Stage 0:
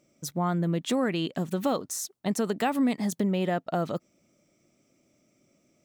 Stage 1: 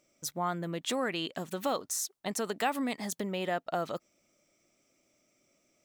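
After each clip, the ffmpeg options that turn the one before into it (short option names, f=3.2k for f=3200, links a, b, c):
-af "equalizer=f=150:t=o:w=2.9:g=-11.5"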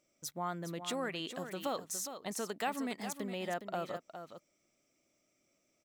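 -af "aecho=1:1:412:0.335,volume=-5.5dB"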